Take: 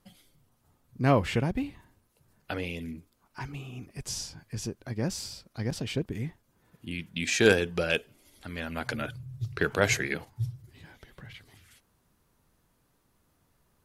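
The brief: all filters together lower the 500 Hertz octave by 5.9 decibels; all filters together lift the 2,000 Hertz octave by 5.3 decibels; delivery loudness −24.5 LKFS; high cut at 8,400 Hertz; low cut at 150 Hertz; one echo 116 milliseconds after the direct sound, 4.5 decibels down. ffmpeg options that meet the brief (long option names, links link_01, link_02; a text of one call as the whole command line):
ffmpeg -i in.wav -af "highpass=150,lowpass=8400,equalizer=frequency=500:width_type=o:gain=-7.5,equalizer=frequency=2000:width_type=o:gain=7.5,aecho=1:1:116:0.596,volume=3.5dB" out.wav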